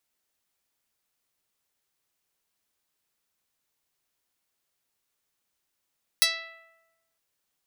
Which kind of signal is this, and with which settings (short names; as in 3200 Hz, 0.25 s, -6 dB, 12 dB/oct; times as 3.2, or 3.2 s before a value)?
plucked string E5, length 0.96 s, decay 1.16 s, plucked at 0.09, medium